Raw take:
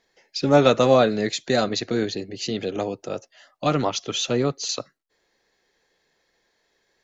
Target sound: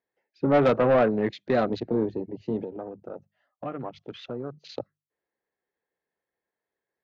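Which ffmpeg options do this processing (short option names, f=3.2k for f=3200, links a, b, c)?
-filter_complex "[0:a]highpass=62,bandreject=f=50:t=h:w=6,bandreject=f=100:t=h:w=6,bandreject=f=150:t=h:w=6,bandreject=f=200:t=h:w=6,afwtdn=0.0282,lowpass=1.8k,asettb=1/sr,asplit=3[a][b][c];[a]atrim=end=2.644[d];[b]atrim=start=2.64:end=4.65,asetpts=PTS-STARTPTS,afade=t=in:d=0.004:c=qsin,afade=t=out:st=2.006:d=0.004:c=qsin,acompressor=threshold=-41dB:ratio=2[e];[c]atrim=start=4.646[f];[d][e]acrossfade=d=0.004:c1=hsin:c2=qsin[g];[g][f]acrossfade=d=0.004:c1=qsin:c2=hsin,asoftclip=type=tanh:threshold=-14dB"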